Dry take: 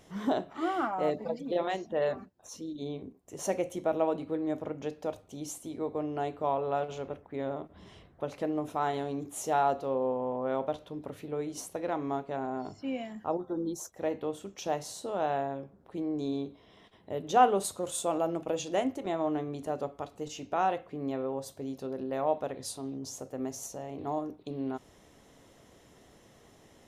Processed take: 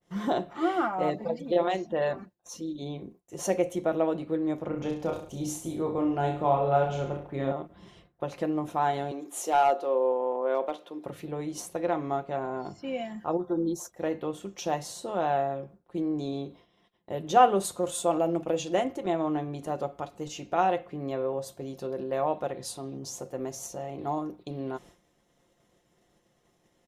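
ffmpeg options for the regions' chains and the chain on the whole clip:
ffmpeg -i in.wav -filter_complex "[0:a]asettb=1/sr,asplit=3[link_01][link_02][link_03];[link_01]atrim=end=4.684[link_04];[link_02]atrim=start=4.68:end=7.52,asetpts=PTS-STARTPTS,afade=type=in:duration=0.004:curve=qsin,afade=type=out:start_time=2.836:duration=0.004:curve=qsin,lowshelf=frequency=140:gain=10,aecho=1:1:30|63|99.3|139.2|183.2:0.631|0.398|0.251|0.158|0.1,atrim=end_sample=125244[link_05];[link_03]atrim=start=7.516[link_06];[link_04][link_05]acrossfade=duration=0.004:curve1=hsin:curve2=qsin[link_07];[link_07][link_06]acrossfade=duration=0.004:curve1=qsin:curve2=hsin,asettb=1/sr,asplit=3[link_08][link_09][link_10];[link_08]atrim=end=9.114[link_11];[link_09]atrim=start=9.11:end=11.06,asetpts=PTS-STARTPTS,afade=type=in:duration=0.004:curve=qsin,afade=type=out:start_time=1.946:duration=0.004:curve=qsin,highpass=frequency=270:width=0.5412,highpass=frequency=270:width=1.3066,asoftclip=type=hard:threshold=-20.5dB[link_12];[link_10]atrim=start=11.056[link_13];[link_11][link_12]acrossfade=duration=0.004:curve1=hsin:curve2=qsin[link_14];[link_14][link_13]acrossfade=duration=0.004:curve1=qsin:curve2=hsin,agate=range=-33dB:threshold=-48dB:ratio=3:detection=peak,aecho=1:1:5.7:0.47,adynamicequalizer=threshold=0.00251:dfrequency=3500:dqfactor=0.7:tfrequency=3500:tqfactor=0.7:attack=5:release=100:ratio=0.375:range=1.5:mode=cutabove:tftype=highshelf,volume=2.5dB" out.wav

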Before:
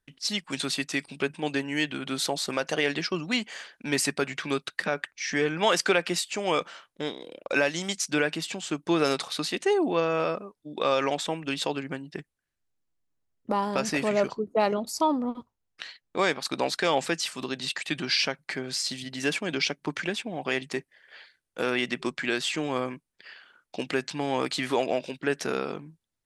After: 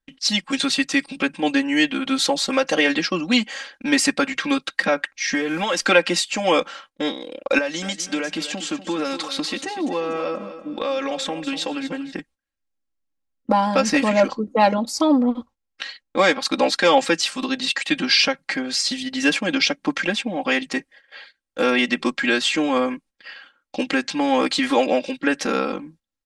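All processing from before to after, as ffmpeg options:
ffmpeg -i in.wav -filter_complex "[0:a]asettb=1/sr,asplit=3[link_01][link_02][link_03];[link_01]atrim=end=5.344[link_04];[link_02]atrim=start=5.34:end=5.86,asetpts=PTS-STARTPTS,afade=type=in:duration=0.004:curve=qsin,afade=type=out:start_time=0.516:duration=0.004:curve=qsin,acrusher=bits=9:dc=4:mix=0:aa=0.000001,acompressor=threshold=-26dB:ratio=4:attack=3.2:release=140:knee=1:detection=peak[link_05];[link_03]atrim=start=5.856[link_06];[link_04][link_05]acrossfade=duration=0.004:curve1=hsin:curve2=qsin[link_07];[link_07][link_06]acrossfade=duration=0.004:curve1=qsin:curve2=hsin,asettb=1/sr,asplit=3[link_08][link_09][link_10];[link_08]atrim=end=7.584[link_11];[link_09]atrim=start=7.58:end=12.13,asetpts=PTS-STARTPTS,afade=type=in:duration=0.004:curve=qsin,afade=type=out:start_time=4.546:duration=0.004:curve=qsin,acompressor=threshold=-31dB:ratio=3:attack=3.2:release=140:knee=1:detection=peak,aecho=1:1:242|484|726|968:0.251|0.0879|0.0308|0.0108,atrim=end_sample=200655[link_12];[link_10]atrim=start=12.126[link_13];[link_11][link_12]acrossfade=duration=0.004:curve1=hsin:curve2=qsin[link_14];[link_14][link_13]acrossfade=duration=0.004:curve1=qsin:curve2=hsin,agate=range=-11dB:threshold=-54dB:ratio=16:detection=peak,lowpass=8000,aecho=1:1:3.7:0.96,volume=5.5dB" out.wav

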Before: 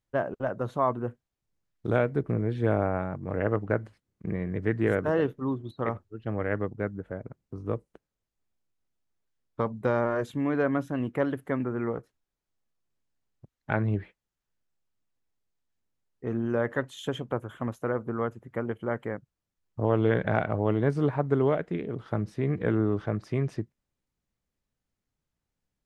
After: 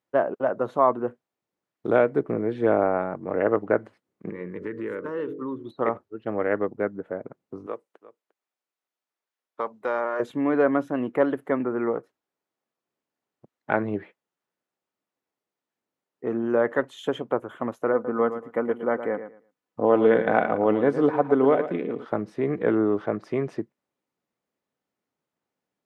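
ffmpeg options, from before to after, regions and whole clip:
ffmpeg -i in.wav -filter_complex "[0:a]asettb=1/sr,asplit=3[link_01][link_02][link_03];[link_01]atrim=end=4.294[link_04];[link_02]atrim=start=4.29:end=5.67,asetpts=PTS-STARTPTS,afade=type=in:duration=0.004:curve=qsin,afade=type=out:start_time=1.376:duration=0.004:curve=qsin,bandreject=frequency=46.33:width_type=h:width=4,bandreject=frequency=92.66:width_type=h:width=4,bandreject=frequency=138.99:width_type=h:width=4,bandreject=frequency=185.32:width_type=h:width=4,bandreject=frequency=231.65:width_type=h:width=4,bandreject=frequency=277.98:width_type=h:width=4,bandreject=frequency=324.31:width_type=h:width=4,bandreject=frequency=370.64:width_type=h:width=4,bandreject=frequency=416.97:width_type=h:width=4,bandreject=frequency=463.3:width_type=h:width=4,bandreject=frequency=509.63:width_type=h:width=4,bandreject=frequency=555.96:width_type=h:width=4,bandreject=frequency=602.29:width_type=h:width=4,bandreject=frequency=648.62:width_type=h:width=4,bandreject=frequency=694.95:width_type=h:width=4,bandreject=frequency=741.28:width_type=h:width=4,acompressor=threshold=-31dB:ratio=5:attack=3.2:release=140:knee=1:detection=peak,asuperstop=centerf=710:order=4:qfactor=2.1[link_05];[link_03]atrim=start=5.666[link_06];[link_04][link_05]acrossfade=duration=0.004:curve1=hsin:curve2=qsin[link_07];[link_07][link_06]acrossfade=duration=0.004:curve1=qsin:curve2=hsin,asettb=1/sr,asplit=3[link_08][link_09][link_10];[link_08]atrim=end=7.664[link_11];[link_09]atrim=start=7.66:end=10.2,asetpts=PTS-STARTPTS,afade=type=in:duration=0.004:curve=qsin,afade=type=out:start_time=2.536:duration=0.004:curve=qsin,highpass=frequency=1100:poles=1,aecho=1:1:351:0.141,atrim=end_sample=112014[link_12];[link_10]atrim=start=10.196[link_13];[link_11][link_12]acrossfade=duration=0.004:curve1=hsin:curve2=qsin[link_14];[link_14][link_13]acrossfade=duration=0.004:curve1=qsin:curve2=hsin,asettb=1/sr,asplit=3[link_15][link_16][link_17];[link_15]atrim=end=17.934[link_18];[link_16]atrim=start=17.93:end=22.05,asetpts=PTS-STARTPTS,afade=type=in:duration=0.004:curve=qsin,afade=type=out:start_time=4.116:duration=0.004:curve=qsin,aecho=1:1:4:0.36,atrim=end_sample=181692,aecho=1:1:113|226|339:0.282|0.0564|0.0113,atrim=end_sample=181692[link_19];[link_17]atrim=start=22.046[link_20];[link_18][link_19]acrossfade=duration=0.004:curve1=hsin:curve2=qsin[link_21];[link_21][link_20]acrossfade=duration=0.004:curve1=qsin:curve2=hsin,highpass=300,highshelf=frequency=2600:gain=-12,bandreject=frequency=1600:width=30,volume=7.5dB" out.wav

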